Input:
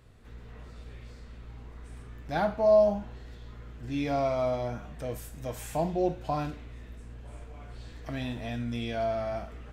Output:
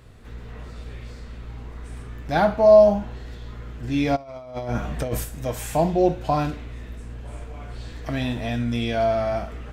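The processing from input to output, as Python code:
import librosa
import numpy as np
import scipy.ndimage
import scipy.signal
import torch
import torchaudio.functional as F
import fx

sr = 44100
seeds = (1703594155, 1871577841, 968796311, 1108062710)

y = fx.over_compress(x, sr, threshold_db=-36.0, ratio=-0.5, at=(4.15, 5.23), fade=0.02)
y = y * librosa.db_to_amplitude(8.5)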